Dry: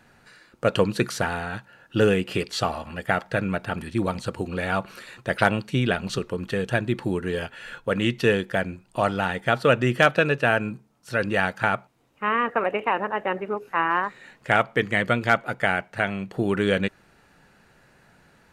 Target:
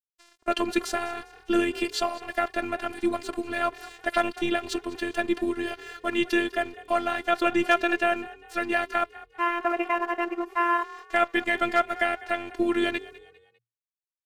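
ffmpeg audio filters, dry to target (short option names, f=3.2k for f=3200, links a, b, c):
-filter_complex "[0:a]bandreject=f=1.5k:w=18,agate=range=-7dB:threshold=-54dB:ratio=16:detection=peak,highpass=f=120:p=1,asplit=2[a][b];[b]alimiter=limit=-12.5dB:level=0:latency=1,volume=-3dB[c];[a][c]amix=inputs=2:normalize=0,afftfilt=real='hypot(re,im)*cos(PI*b)':imag='0':win_size=512:overlap=0.75,aeval=exprs='sgn(val(0))*max(abs(val(0))-0.00422,0)':c=same,atempo=1.3,aeval=exprs='0.75*(cos(1*acos(clip(val(0)/0.75,-1,1)))-cos(1*PI/2))+0.00473*(cos(4*acos(clip(val(0)/0.75,-1,1)))-cos(4*PI/2))':c=same,asplit=4[d][e][f][g];[e]adelay=200,afreqshift=39,volume=-19dB[h];[f]adelay=400,afreqshift=78,volume=-27.6dB[i];[g]adelay=600,afreqshift=117,volume=-36.3dB[j];[d][h][i][j]amix=inputs=4:normalize=0,volume=-1.5dB"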